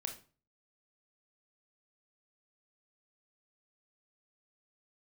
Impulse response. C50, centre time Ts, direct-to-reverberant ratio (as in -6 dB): 10.0 dB, 15 ms, 3.5 dB